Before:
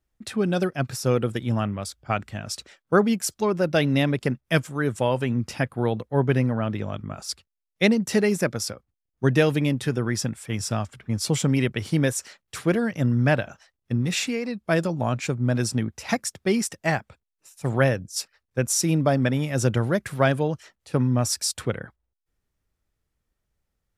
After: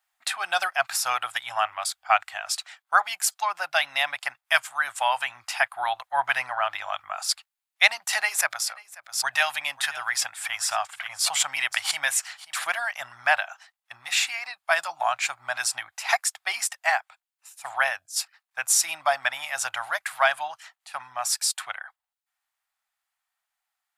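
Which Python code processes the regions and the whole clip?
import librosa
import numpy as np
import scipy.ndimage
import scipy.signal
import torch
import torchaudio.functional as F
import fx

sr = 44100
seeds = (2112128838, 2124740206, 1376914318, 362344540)

y = fx.chain(x, sr, fx.notch(hz=320.0, q=7.8),
    fx.echo_single(ms=536, db=-20.0),
    fx.pre_swell(db_per_s=140.0), at=(8.13, 12.67))
y = scipy.signal.sosfilt(scipy.signal.ellip(4, 1.0, 40, 730.0, 'highpass', fs=sr, output='sos'), y)
y = fx.peak_eq(y, sr, hz=5700.0, db=-5.0, octaves=0.26)
y = fx.rider(y, sr, range_db=4, speed_s=2.0)
y = F.gain(torch.from_numpy(y), 6.0).numpy()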